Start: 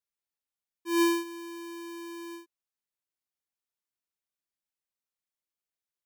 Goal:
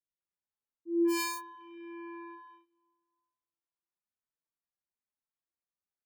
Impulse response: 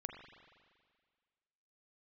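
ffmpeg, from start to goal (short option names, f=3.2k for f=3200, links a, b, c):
-filter_complex "[0:a]acrossover=split=480|1900[a][b][c];[b]asoftclip=type=hard:threshold=-36.5dB[d];[c]acrusher=bits=4:mix=0:aa=0.5[e];[a][d][e]amix=inputs=3:normalize=0,asplit=3[f][g][h];[f]afade=t=out:st=1.4:d=0.02[i];[g]equalizer=f=2.6k:t=o:w=0.39:g=12.5,afade=t=in:st=1.4:d=0.02,afade=t=out:st=2.15:d=0.02[j];[h]afade=t=in:st=2.15:d=0.02[k];[i][j][k]amix=inputs=3:normalize=0,acrossover=split=470[l][m];[m]adelay=190[n];[l][n]amix=inputs=2:normalize=0,asplit=2[o][p];[1:a]atrim=start_sample=2205[q];[p][q]afir=irnorm=-1:irlink=0,volume=-12.5dB[r];[o][r]amix=inputs=2:normalize=0,asplit=2[s][t];[t]adelay=3.9,afreqshift=1.1[u];[s][u]amix=inputs=2:normalize=1"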